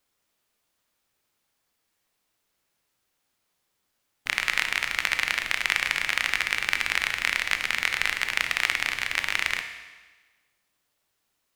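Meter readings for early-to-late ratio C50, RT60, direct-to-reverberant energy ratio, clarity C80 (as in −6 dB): 8.5 dB, 1.3 s, 7.0 dB, 10.0 dB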